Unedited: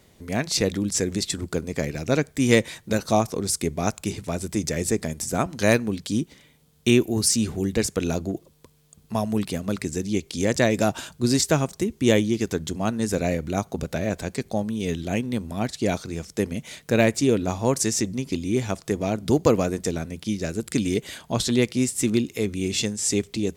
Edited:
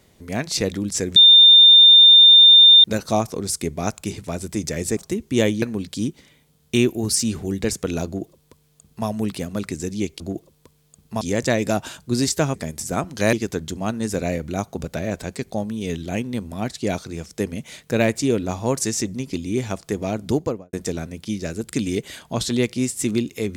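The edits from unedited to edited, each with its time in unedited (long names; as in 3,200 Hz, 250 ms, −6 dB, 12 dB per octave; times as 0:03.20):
0:01.16–0:02.84: beep over 3,610 Hz −6 dBFS
0:04.97–0:05.75: swap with 0:11.67–0:12.32
0:08.19–0:09.20: duplicate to 0:10.33
0:19.24–0:19.72: fade out and dull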